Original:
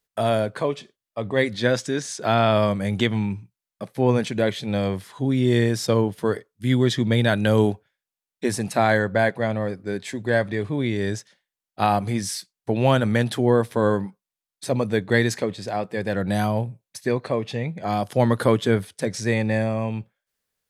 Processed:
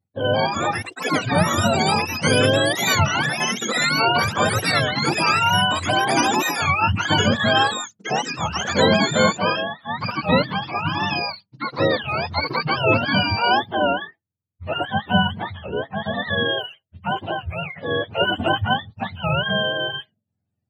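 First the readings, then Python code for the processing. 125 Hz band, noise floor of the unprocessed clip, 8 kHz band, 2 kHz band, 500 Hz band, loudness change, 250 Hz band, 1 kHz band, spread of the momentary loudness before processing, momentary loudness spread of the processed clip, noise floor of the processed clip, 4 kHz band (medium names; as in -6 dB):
-1.5 dB, under -85 dBFS, +6.5 dB, +7.5 dB, -1.0 dB, +2.5 dB, -1.5 dB, +6.5 dB, 10 LU, 10 LU, -78 dBFS, +11.5 dB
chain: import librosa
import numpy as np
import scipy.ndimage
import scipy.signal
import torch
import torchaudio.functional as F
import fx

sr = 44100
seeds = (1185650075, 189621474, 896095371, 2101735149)

y = fx.octave_mirror(x, sr, pivot_hz=590.0)
y = fx.echo_pitch(y, sr, ms=227, semitones=7, count=3, db_per_echo=-3.0)
y = fx.record_warp(y, sr, rpm=33.33, depth_cents=250.0)
y = y * 10.0 ** (1.5 / 20.0)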